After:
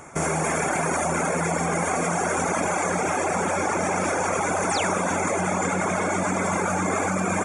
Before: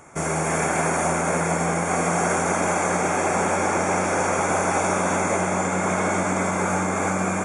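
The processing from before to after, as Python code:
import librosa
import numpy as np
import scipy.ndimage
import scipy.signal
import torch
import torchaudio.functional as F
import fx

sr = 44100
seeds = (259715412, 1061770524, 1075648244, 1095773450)

p1 = fx.dereverb_blind(x, sr, rt60_s=1.1)
p2 = fx.over_compress(p1, sr, threshold_db=-28.0, ratio=-0.5)
p3 = p1 + (p2 * librosa.db_to_amplitude(-1.5))
p4 = fx.spec_paint(p3, sr, seeds[0], shape='fall', start_s=4.69, length_s=0.29, low_hz=420.0, high_hz=9900.0, level_db=-28.0)
y = p4 * librosa.db_to_amplitude(-2.5)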